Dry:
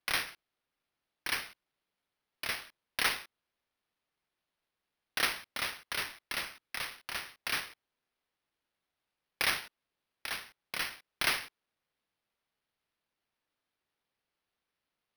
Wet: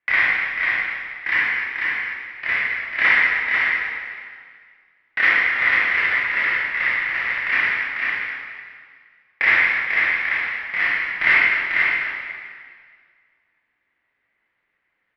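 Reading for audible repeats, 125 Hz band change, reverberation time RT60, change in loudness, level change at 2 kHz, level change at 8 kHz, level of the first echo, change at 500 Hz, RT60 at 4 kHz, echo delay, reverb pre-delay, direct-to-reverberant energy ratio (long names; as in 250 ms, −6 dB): 1, can't be measured, 1.9 s, +16.0 dB, +21.5 dB, below −10 dB, −4.0 dB, +9.5 dB, 1.8 s, 495 ms, 7 ms, −9.0 dB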